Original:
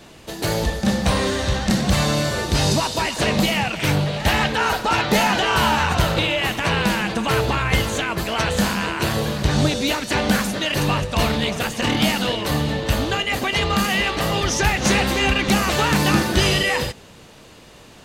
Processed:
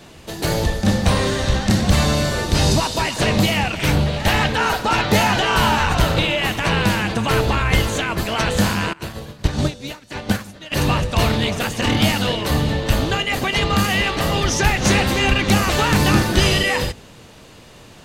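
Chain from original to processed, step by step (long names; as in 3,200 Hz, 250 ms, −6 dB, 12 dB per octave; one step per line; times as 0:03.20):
sub-octave generator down 1 octave, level −2 dB
0:08.93–0:10.72: expander for the loud parts 2.5 to 1, over −26 dBFS
level +1 dB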